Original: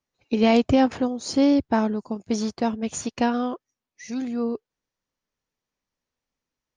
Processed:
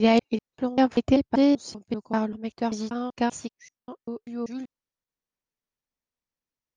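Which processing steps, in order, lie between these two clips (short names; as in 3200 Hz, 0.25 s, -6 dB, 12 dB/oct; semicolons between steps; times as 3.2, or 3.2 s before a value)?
slices in reverse order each 0.194 s, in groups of 3; upward expander 1.5:1, over -31 dBFS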